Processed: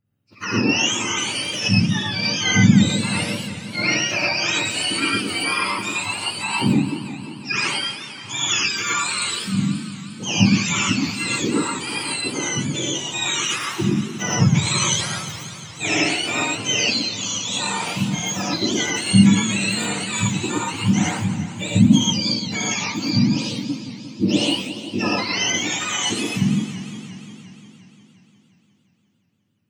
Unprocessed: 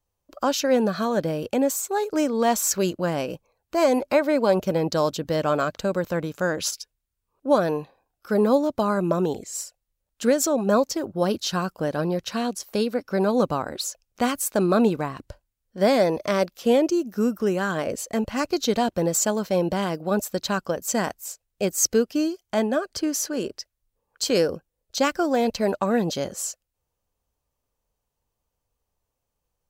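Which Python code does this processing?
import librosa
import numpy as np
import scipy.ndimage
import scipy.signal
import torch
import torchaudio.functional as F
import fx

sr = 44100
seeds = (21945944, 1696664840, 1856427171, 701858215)

y = fx.octave_mirror(x, sr, pivot_hz=1200.0)
y = fx.rev_gated(y, sr, seeds[0], gate_ms=140, shape='rising', drr_db=-3.5)
y = fx.echo_warbled(y, sr, ms=176, feedback_pct=73, rate_hz=2.8, cents=210, wet_db=-12)
y = F.gain(torch.from_numpy(y), -1.0).numpy()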